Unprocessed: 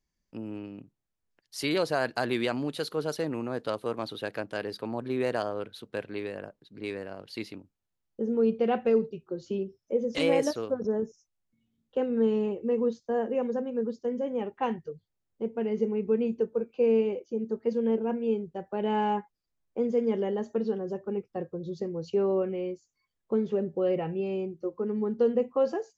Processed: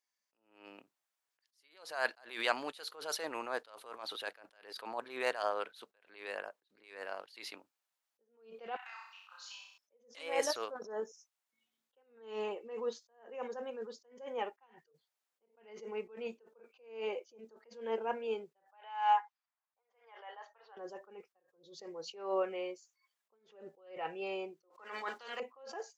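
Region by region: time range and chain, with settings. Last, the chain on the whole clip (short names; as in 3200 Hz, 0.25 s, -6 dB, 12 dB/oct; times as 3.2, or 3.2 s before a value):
8.76–9.78 steep high-pass 890 Hz 48 dB/oct + compressor 12:1, threshold -51 dBFS + flutter echo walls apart 5.5 m, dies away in 0.75 s
18.72–20.77 Chebyshev high-pass 770 Hz, order 3 + low-pass opened by the level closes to 1500 Hz, open at -26.5 dBFS + high shelf 9900 Hz -6.5 dB
24.7–25.4 weighting filter A + spectral compressor 2:1
whole clip: Chebyshev high-pass 900 Hz, order 2; AGC gain up to 6 dB; attack slew limiter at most 110 dB/s; gain -1 dB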